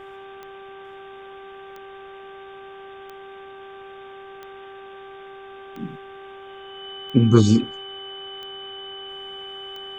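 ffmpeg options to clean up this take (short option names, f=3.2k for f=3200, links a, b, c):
-af "adeclick=t=4,bandreject=f=390.6:t=h:w=4,bandreject=f=781.2:t=h:w=4,bandreject=f=1.1718k:t=h:w=4,bandreject=f=1.5624k:t=h:w=4,bandreject=f=3k:w=30,afftdn=nr=30:nf=-41"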